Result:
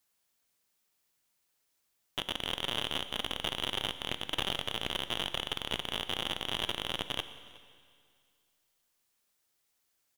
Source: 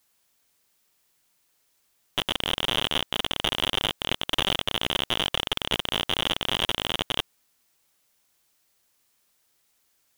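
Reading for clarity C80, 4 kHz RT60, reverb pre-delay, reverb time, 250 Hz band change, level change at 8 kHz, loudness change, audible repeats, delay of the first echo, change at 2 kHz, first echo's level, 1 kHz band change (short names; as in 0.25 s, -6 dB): 13.0 dB, 2.1 s, 14 ms, 2.1 s, -8.0 dB, -8.0 dB, -8.0 dB, 1, 0.366 s, -8.0 dB, -23.5 dB, -8.0 dB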